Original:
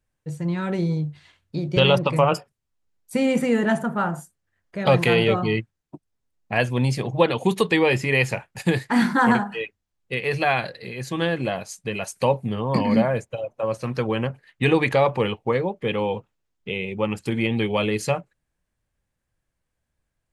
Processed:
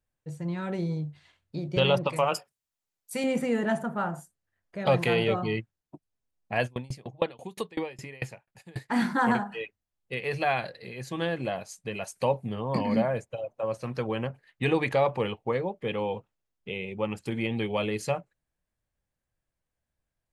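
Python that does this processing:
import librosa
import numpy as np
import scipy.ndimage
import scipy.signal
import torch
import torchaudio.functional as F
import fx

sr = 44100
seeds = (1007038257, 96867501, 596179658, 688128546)

y = fx.tilt_eq(x, sr, slope=2.5, at=(2.09, 3.24))
y = fx.tremolo_decay(y, sr, direction='decaying', hz=fx.line((6.66, 7.4), (8.88, 3.2)), depth_db=28, at=(6.66, 8.88), fade=0.02)
y = fx.peak_eq(y, sr, hz=670.0, db=3.0, octaves=0.77)
y = F.gain(torch.from_numpy(y), -7.0).numpy()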